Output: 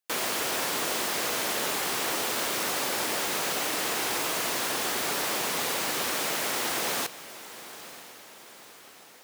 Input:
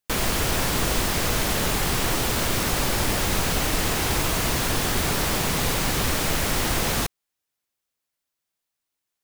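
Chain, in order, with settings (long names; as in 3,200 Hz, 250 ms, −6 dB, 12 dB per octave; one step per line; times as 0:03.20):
high-pass filter 350 Hz 12 dB per octave
feedback delay with all-pass diffusion 956 ms, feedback 53%, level −15.5 dB
level −3.5 dB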